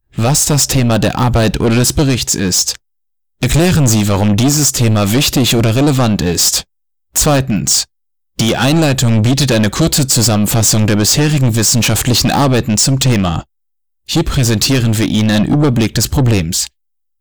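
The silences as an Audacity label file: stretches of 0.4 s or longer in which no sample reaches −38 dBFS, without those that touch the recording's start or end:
2.760000	3.410000	silence
6.630000	7.150000	silence
7.840000	8.390000	silence
13.430000	14.080000	silence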